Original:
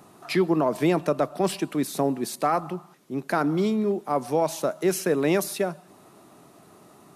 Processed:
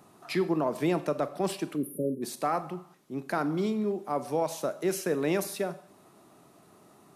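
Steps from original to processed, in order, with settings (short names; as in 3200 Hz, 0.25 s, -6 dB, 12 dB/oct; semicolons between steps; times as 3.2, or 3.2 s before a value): spectral delete 1.76–2.22, 600–9300 Hz; Schroeder reverb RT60 0.48 s, combs from 30 ms, DRR 13 dB; gain -5.5 dB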